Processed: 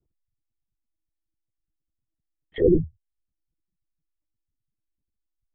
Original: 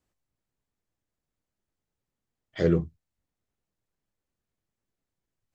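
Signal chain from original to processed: formant sharpening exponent 3; LPC vocoder at 8 kHz pitch kept; gain +4.5 dB

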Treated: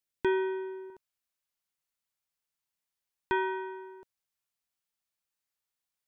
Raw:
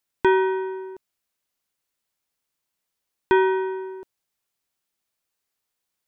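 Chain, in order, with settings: bell 980 Hz -6 dB 1.4 oct, from 0.9 s 350 Hz; gain -7.5 dB

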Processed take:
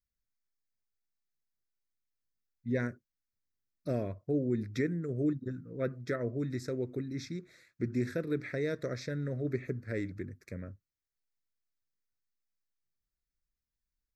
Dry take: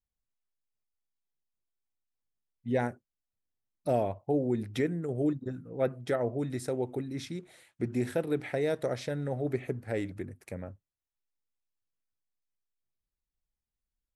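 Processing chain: fixed phaser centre 3000 Hz, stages 6

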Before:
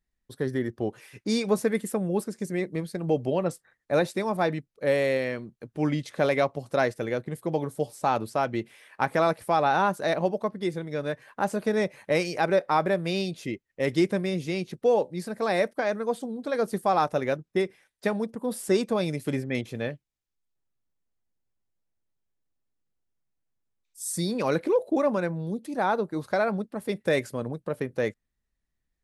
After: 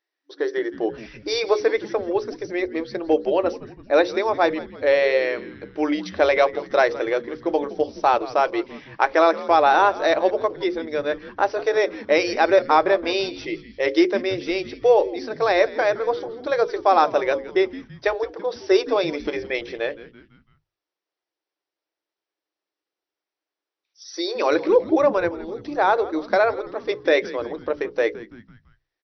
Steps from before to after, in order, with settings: notches 60/120/180/240/300/360/420/480/540 Hz; FFT band-pass 290–6000 Hz; frequency-shifting echo 0.167 s, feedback 49%, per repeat -110 Hz, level -17 dB; gain +7 dB

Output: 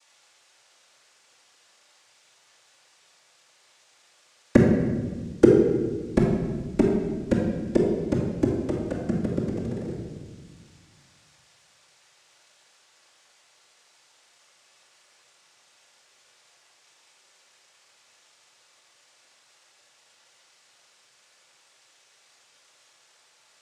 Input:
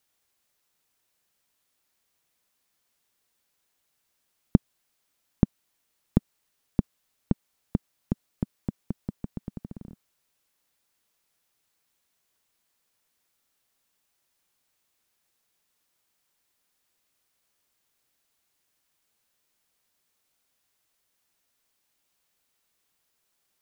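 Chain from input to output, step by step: Chebyshev band-stop 140–1500 Hz, order 2; overdrive pedal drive 24 dB, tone 1100 Hz, clips at -1.5 dBFS; noise vocoder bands 3; reverb RT60 1.5 s, pre-delay 3 ms, DRR -2.5 dB; gain +4 dB

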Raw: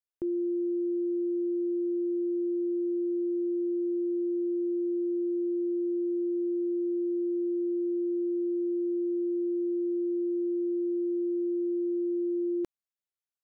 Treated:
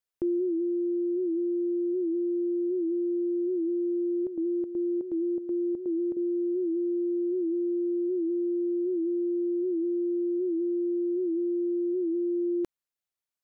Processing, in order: vocal rider 0.5 s; 4.01–6.17 chopper 2.7 Hz, depth 65%, duty 70%; record warp 78 rpm, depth 100 cents; gain +1.5 dB

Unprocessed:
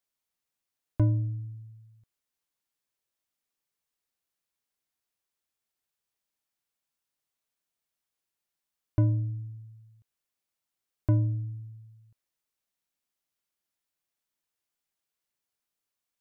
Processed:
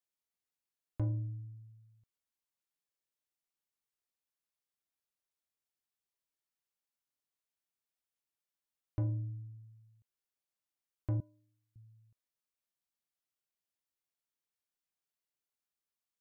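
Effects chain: 11.2–11.76 HPF 760 Hz 12 dB/oct; soft clip -18 dBFS, distortion -18 dB; gain -8 dB

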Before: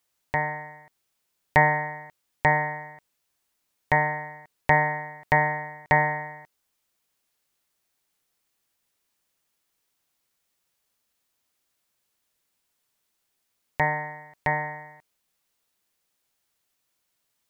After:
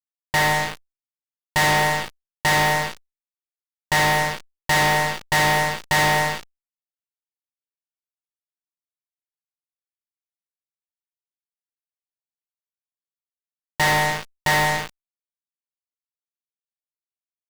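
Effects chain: fuzz box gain 40 dB, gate -39 dBFS; power-law curve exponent 0.5; gain -4.5 dB

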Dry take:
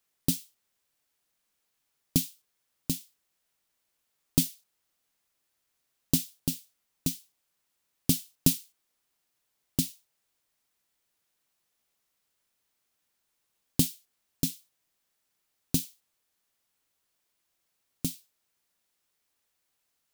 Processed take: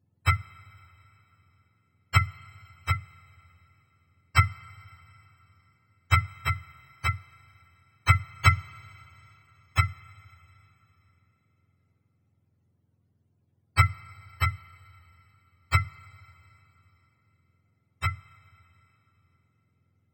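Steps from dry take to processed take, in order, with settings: spectrum mirrored in octaves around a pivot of 590 Hz; Schroeder reverb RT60 3.6 s, combs from 26 ms, DRR 20 dB; gain +9 dB

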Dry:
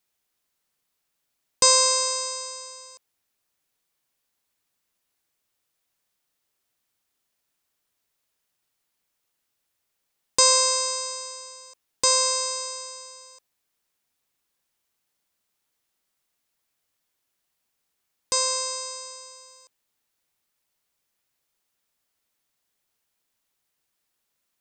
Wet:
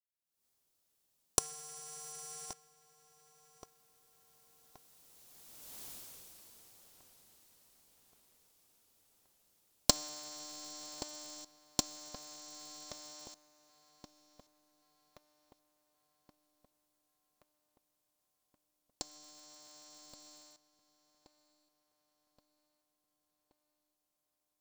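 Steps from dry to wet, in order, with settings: recorder AGC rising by 57 dB/s; Doppler pass-by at 5.85, 51 m/s, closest 9.4 m; bell 1800 Hz -10.5 dB 1.6 oct; darkening echo 1.125 s, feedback 57%, low-pass 3600 Hz, level -14 dB; polarity switched at an audio rate 150 Hz; gain +1 dB

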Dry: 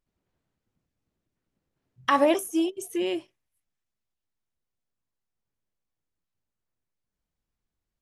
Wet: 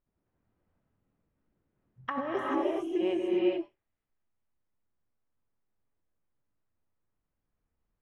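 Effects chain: LPF 1800 Hz 12 dB/oct; negative-ratio compressor -27 dBFS, ratio -1; non-linear reverb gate 0.46 s rising, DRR -3.5 dB; gain -4.5 dB

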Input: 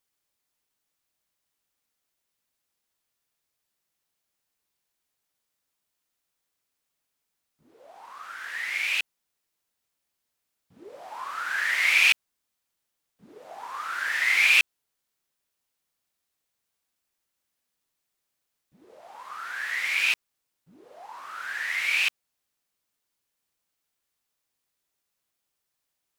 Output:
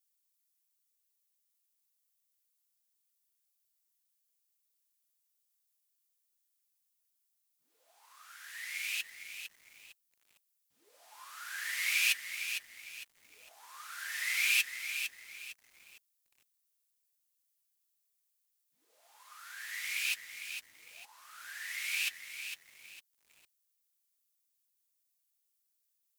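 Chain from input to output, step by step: pre-emphasis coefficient 0.97; notch comb 190 Hz; lo-fi delay 0.455 s, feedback 35%, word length 9-bit, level -8 dB

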